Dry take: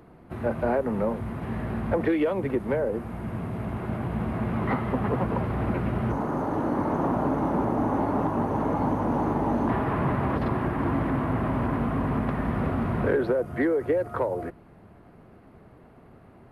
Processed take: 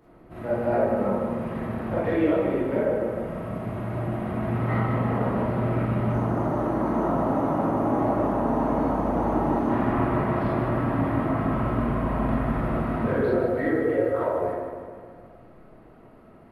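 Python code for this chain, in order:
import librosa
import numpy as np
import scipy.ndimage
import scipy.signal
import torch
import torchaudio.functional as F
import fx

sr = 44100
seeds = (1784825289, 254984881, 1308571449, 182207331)

p1 = x + fx.echo_feedback(x, sr, ms=153, feedback_pct=59, wet_db=-7, dry=0)
p2 = fx.rev_freeverb(p1, sr, rt60_s=0.87, hf_ratio=0.35, predelay_ms=0, drr_db=-7.5)
y = F.gain(torch.from_numpy(p2), -8.0).numpy()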